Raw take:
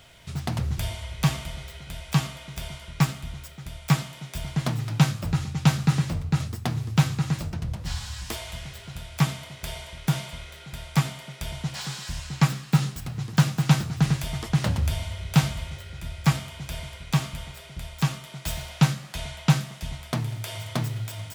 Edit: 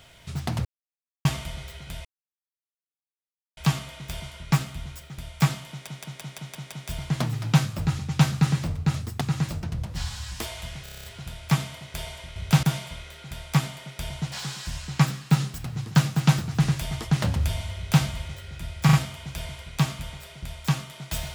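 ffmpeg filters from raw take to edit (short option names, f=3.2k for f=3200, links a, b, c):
-filter_complex "[0:a]asplit=22[a][b][c][d][e][f][g][h][i][j][k][l][m][n][o][p][q][r][s][t][u][v];[a]atrim=end=0.65,asetpts=PTS-STARTPTS,afade=t=out:st=0.646:d=0.004:c=hsin[w];[b]atrim=start=0.65:end=1.25,asetpts=PTS-STARTPTS,volume=0[x];[c]atrim=start=1.25:end=2.05,asetpts=PTS-STARTPTS,afade=t=in:d=0.004:c=hsin,afade=t=out:st=0.796:d=0.004:c=hsin,apad=pad_dur=1.52[y];[d]atrim=start=2.05:end=4.352,asetpts=PTS-STARTPTS,afade=t=in:d=0.004:c=hsin[z];[e]atrim=start=4.178:end=4.352[aa];[f]atrim=start=4.178:end=4.352[ab];[g]atrim=start=4.178:end=4.352[ac];[h]atrim=start=4.178:end=4.352[ad];[i]atrim=start=4.178:end=4.352[ae];[j]atrim=start=4.178:end=6.672[af];[k]atrim=start=7.108:end=8.762[ag];[l]atrim=start=8.728:end=8.762[ah];[m]atrim=start=8.728:end=8.762[ai];[n]atrim=start=8.728:end=8.762[aj];[o]atrim=start=8.728:end=8.762[ak];[p]atrim=start=8.728:end=8.762[al];[q]atrim=start=8.728:end=8.762[am];[r]atrim=start=8.728:end=10.052[an];[s]atrim=start=15.188:end=15.462[ao];[t]atrim=start=10.048:end=16.312[ap];[u]atrim=start=16.268:end=16.312[aq];[v]atrim=start=16.268[ar];[w][x][y][z]concat=n=4:v=0:a=1[as];[as][aa]acrossfade=d=0.004:c1=hsin:c2=hsin[at];[at][ab]acrossfade=d=0.004:c1=hsin:c2=hsin[au];[au][ac]acrossfade=d=0.004:c1=hsin:c2=hsin[av];[av][ad]acrossfade=d=0.004:c1=hsin:c2=hsin[aw];[aw][ae]acrossfade=d=0.004:c1=hsin:c2=hsin[ax];[ax][af]acrossfade=d=0.004:c1=hsin:c2=hsin[ay];[ay][ag]acrossfade=d=0.004:c1=hsin:c2=hsin[az];[az][ah]acrossfade=d=0.004:c1=hsin:c2=hsin[ba];[ba][ai]acrossfade=d=0.004:c1=hsin:c2=hsin[bb];[bb][aj]acrossfade=d=0.004:c1=hsin:c2=hsin[bc];[bc][ak]acrossfade=d=0.004:c1=hsin:c2=hsin[bd];[bd][al]acrossfade=d=0.004:c1=hsin:c2=hsin[be];[be][am]acrossfade=d=0.004:c1=hsin:c2=hsin[bf];[bf][an]acrossfade=d=0.004:c1=hsin:c2=hsin[bg];[bg][ao]acrossfade=d=0.004:c1=hsin:c2=hsin[bh];[bh][ap]acrossfade=d=0.004:c1=hsin:c2=hsin[bi];[bi][aq]acrossfade=d=0.004:c1=hsin:c2=hsin[bj];[bj][ar]acrossfade=d=0.004:c1=hsin:c2=hsin"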